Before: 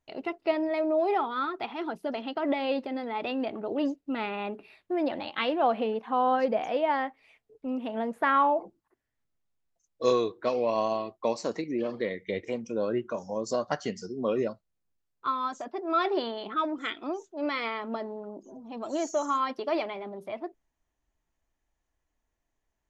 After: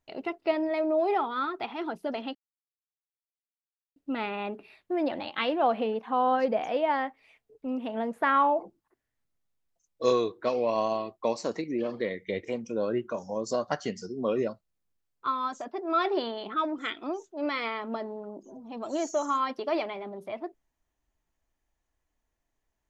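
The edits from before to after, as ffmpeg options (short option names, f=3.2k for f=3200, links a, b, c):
-filter_complex "[0:a]asplit=3[a][b][c];[a]atrim=end=2.35,asetpts=PTS-STARTPTS,afade=t=out:st=2.346:d=0.004:c=hsin[d];[b]atrim=start=2.35:end=3.96,asetpts=PTS-STARTPTS,volume=0[e];[c]atrim=start=3.96,asetpts=PTS-STARTPTS,afade=t=in:d=0.004:c=hsin[f];[d][e][f]concat=n=3:v=0:a=1"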